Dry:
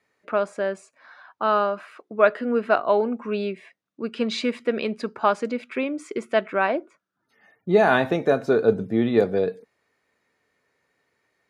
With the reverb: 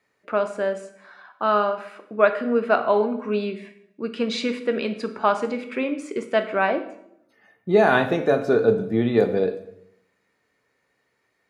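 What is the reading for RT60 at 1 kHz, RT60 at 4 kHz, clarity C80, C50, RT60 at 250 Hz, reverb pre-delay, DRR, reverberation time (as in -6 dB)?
0.65 s, 0.60 s, 14.0 dB, 11.5 dB, 0.95 s, 11 ms, 8.0 dB, 0.75 s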